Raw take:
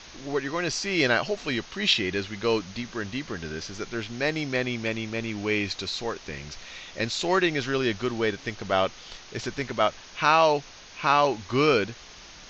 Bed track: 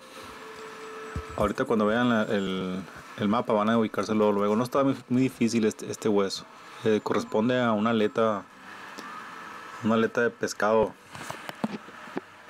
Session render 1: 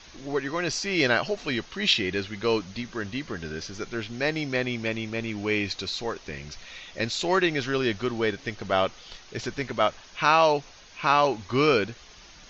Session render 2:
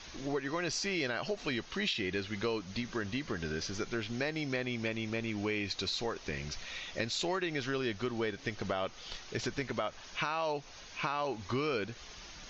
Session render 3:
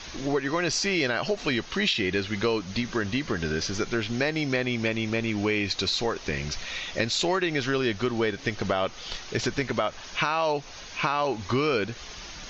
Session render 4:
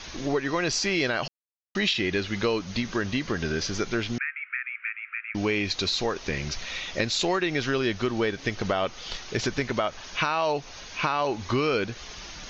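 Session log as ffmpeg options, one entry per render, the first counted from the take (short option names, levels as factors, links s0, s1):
-af "afftdn=nr=6:nf=-47"
-af "alimiter=limit=0.2:level=0:latency=1:release=67,acompressor=threshold=0.0251:ratio=4"
-af "volume=2.66"
-filter_complex "[0:a]asettb=1/sr,asplit=3[s0][s1][s2];[s0]atrim=end=4.184[s3];[s1]atrim=start=4.18:end=5.35,asetpts=PTS-STARTPTS,afade=t=in:d=0.004:c=qsin,afade=t=out:st=1.166:d=0.004:c=qsin,asuperpass=centerf=1800:order=12:qfactor=1.4[s4];[s2]atrim=start=5.346[s5];[s3][s4]acrossfade=d=0.004:c1=hsin:c2=qsin[s6];[s6][s5]acrossfade=d=0.004:c1=qsin:c2=hsin,asplit=3[s7][s8][s9];[s7]atrim=end=1.28,asetpts=PTS-STARTPTS,afade=t=out:st=1.276:d=0.004:c=hsin[s10];[s8]atrim=start=1.28:end=1.75,asetpts=PTS-STARTPTS,volume=0[s11];[s9]atrim=start=1.75,asetpts=PTS-STARTPTS,afade=t=in:d=0.004:c=hsin[s12];[s10][s11][s12]concat=n=3:v=0:a=1"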